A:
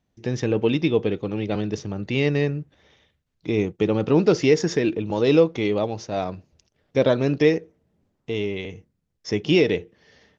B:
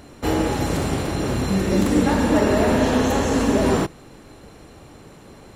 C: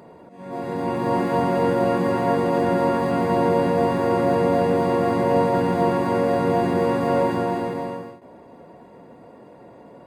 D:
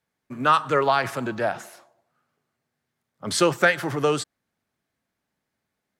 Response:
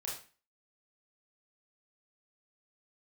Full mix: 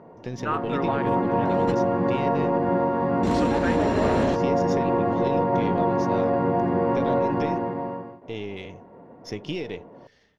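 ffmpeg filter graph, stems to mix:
-filter_complex "[0:a]aeval=exprs='if(lt(val(0),0),0.708*val(0),val(0))':c=same,acompressor=threshold=0.0794:ratio=6,volume=0.562[s0];[1:a]lowpass=5700,asoftclip=type=tanh:threshold=0.447,adelay=1450,volume=0.75[s1];[2:a]lowpass=1600,volume=0.75,asplit=2[s2][s3];[s3]volume=0.237[s4];[3:a]afwtdn=0.0282,volume=0.335,asplit=2[s5][s6];[s6]apad=whole_len=308858[s7];[s1][s7]sidechaingate=range=0.0224:threshold=0.00158:ratio=16:detection=peak[s8];[4:a]atrim=start_sample=2205[s9];[s4][s9]afir=irnorm=-1:irlink=0[s10];[s0][s8][s2][s5][s10]amix=inputs=5:normalize=0,alimiter=limit=0.237:level=0:latency=1:release=147"

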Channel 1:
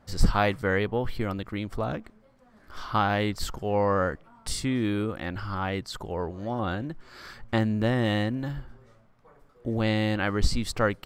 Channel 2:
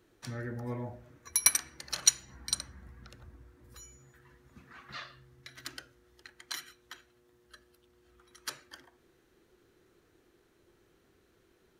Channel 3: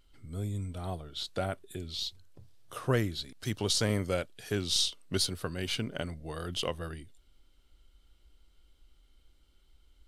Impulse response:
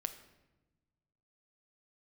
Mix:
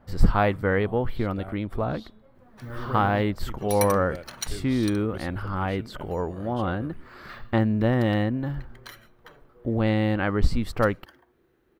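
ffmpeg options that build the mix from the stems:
-filter_complex "[0:a]volume=1.41[s0];[1:a]acrusher=bits=5:mode=log:mix=0:aa=0.000001,adelay=2350,volume=1.19[s1];[2:a]bandreject=f=212.9:t=h:w=4,bandreject=f=425.8:t=h:w=4,bandreject=f=638.7:t=h:w=4,bandreject=f=851.6:t=h:w=4,bandreject=f=1064.5:t=h:w=4,bandreject=f=1277.4:t=h:w=4,bandreject=f=1490.3:t=h:w=4,bandreject=f=1703.2:t=h:w=4,bandreject=f=1916.1:t=h:w=4,bandreject=f=2129:t=h:w=4,bandreject=f=2341.9:t=h:w=4,bandreject=f=2554.8:t=h:w=4,bandreject=f=2767.7:t=h:w=4,bandreject=f=2980.6:t=h:w=4,bandreject=f=3193.5:t=h:w=4,bandreject=f=3406.4:t=h:w=4,bandreject=f=3619.3:t=h:w=4,bandreject=f=3832.2:t=h:w=4,volume=0.473[s2];[s0][s1][s2]amix=inputs=3:normalize=0,equalizer=f=6700:t=o:w=2:g=-14"

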